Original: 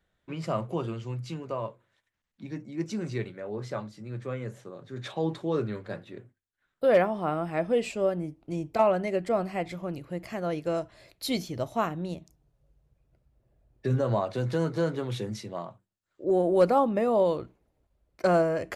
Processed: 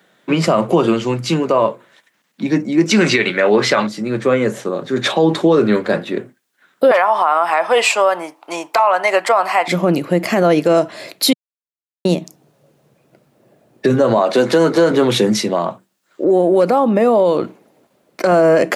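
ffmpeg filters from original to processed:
ffmpeg -i in.wav -filter_complex "[0:a]asettb=1/sr,asplit=3[link_01][link_02][link_03];[link_01]atrim=end=2.914[link_04];[link_02]atrim=start=2.91:end=3.87,asetpts=PTS-STARTPTS,afade=type=in:duration=0.004:curve=qsin,afade=type=out:start_time=0.956:duration=0.004:curve=qsin,equalizer=frequency=2500:width=0.55:gain=13[link_05];[link_03]atrim=start=3.866[link_06];[link_04][link_05]acrossfade=duration=0.004:curve1=hsin:curve2=qsin[link_07];[link_07][link_06]acrossfade=duration=0.004:curve1=qsin:curve2=hsin,asettb=1/sr,asplit=3[link_08][link_09][link_10];[link_08]atrim=end=6.914[link_11];[link_09]atrim=start=6.91:end=9.68,asetpts=PTS-STARTPTS,afade=type=in:duration=0.004:curve=qsin,afade=type=out:start_time=2.766:duration=0.004:curve=qsin,highpass=frequency=960:width_type=q:width=3[link_12];[link_10]atrim=start=9.676[link_13];[link_11][link_12]acrossfade=duration=0.004:curve1=hsin:curve2=qsin[link_14];[link_14][link_13]acrossfade=duration=0.004:curve1=qsin:curve2=hsin,asettb=1/sr,asplit=3[link_15][link_16][link_17];[link_15]atrim=end=14.184[link_18];[link_16]atrim=start=14.18:end=14.91,asetpts=PTS-STARTPTS,afade=type=in:duration=0.004:curve=qsin,afade=type=out:start_time=0.726:duration=0.004:curve=qsin,highpass=220[link_19];[link_17]atrim=start=14.906[link_20];[link_18][link_19]acrossfade=duration=0.004:curve1=hsin:curve2=qsin[link_21];[link_21][link_20]acrossfade=duration=0.004:curve1=qsin:curve2=hsin,asettb=1/sr,asplit=3[link_22][link_23][link_24];[link_22]atrim=end=15.524[link_25];[link_23]atrim=start=15.52:end=18.32,asetpts=PTS-STARTPTS,afade=type=in:duration=0.004:curve=qsin,afade=type=out:start_time=2.796:duration=0.004:curve=qsin,acompressor=threshold=-34dB:ratio=4:attack=3.2:release=140:knee=1:detection=peak[link_26];[link_24]atrim=start=18.316[link_27];[link_25][link_26]acrossfade=duration=0.004:curve1=hsin:curve2=qsin[link_28];[link_28][link_27]acrossfade=duration=0.004:curve1=qsin:curve2=hsin,asplit=3[link_29][link_30][link_31];[link_29]atrim=end=11.33,asetpts=PTS-STARTPTS,afade=type=out:start_time=11.326:duration=0.004:curve=hsin[link_32];[link_30]atrim=start=11.33:end=12.05,asetpts=PTS-STARTPTS,volume=0[link_33];[link_31]atrim=start=12.05,asetpts=PTS-STARTPTS,afade=type=in:duration=0.004:curve=hsin[link_34];[link_32][link_33][link_34]concat=n=3:v=0:a=1,acompressor=threshold=-27dB:ratio=6,highpass=frequency=180:width=0.5412,highpass=frequency=180:width=1.3066,alimiter=level_in=25.5dB:limit=-1dB:release=50:level=0:latency=1,volume=-3dB" out.wav

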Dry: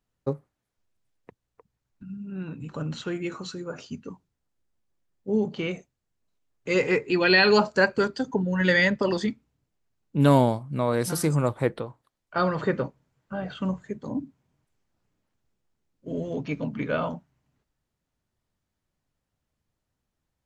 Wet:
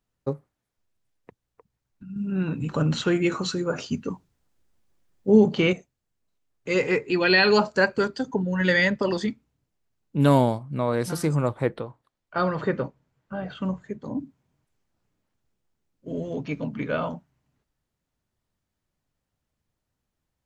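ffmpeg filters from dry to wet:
ffmpeg -i in.wav -filter_complex "[0:a]asettb=1/sr,asplit=3[link_01][link_02][link_03];[link_01]atrim=end=10.584[link_04];[link_02]atrim=start=10.58:end=14.2,asetpts=PTS-STARTPTS,afade=type=in:duration=0.004:curve=qsin,afade=type=out:start_time=3.616:duration=0.004:curve=qsin,highshelf=frequency=7100:gain=-8.5[link_05];[link_03]atrim=start=14.196[link_06];[link_04][link_05]acrossfade=duration=0.004:curve1=hsin:curve2=qsin[link_07];[link_07][link_06]acrossfade=duration=0.004:curve1=qsin:curve2=hsin,asplit=3[link_08][link_09][link_10];[link_08]atrim=end=2.162[link_11];[link_09]atrim=start=2.158:end=5.732,asetpts=PTS-STARTPTS,volume=8.5dB[link_12];[link_10]atrim=start=5.728[link_13];[link_11][link_12]acrossfade=duration=0.004:curve1=hsin:curve2=hsin[link_14];[link_14][link_13]acrossfade=duration=0.004:curve1=hsin:curve2=hsin" out.wav

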